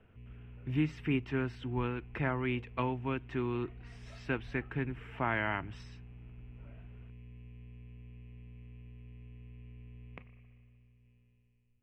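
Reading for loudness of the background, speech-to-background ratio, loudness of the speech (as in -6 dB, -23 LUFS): -52.5 LUFS, 17.0 dB, -35.5 LUFS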